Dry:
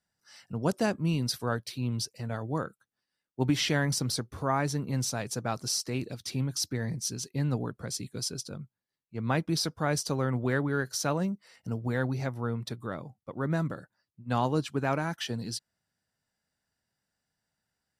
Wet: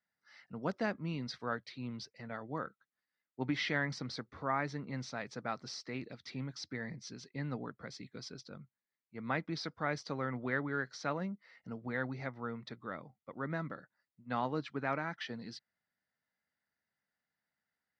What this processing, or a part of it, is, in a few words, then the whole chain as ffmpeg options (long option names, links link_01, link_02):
guitar cabinet: -af "highpass=97,equalizer=frequency=110:width_type=q:width=4:gain=-9,equalizer=frequency=160:width_type=q:width=4:gain=-3,equalizer=frequency=370:width_type=q:width=4:gain=-3,equalizer=frequency=1300:width_type=q:width=4:gain=4,equalizer=frequency=2000:width_type=q:width=4:gain=9,equalizer=frequency=2900:width_type=q:width=4:gain=-4,lowpass=frequency=4500:width=0.5412,lowpass=frequency=4500:width=1.3066,volume=-7dB"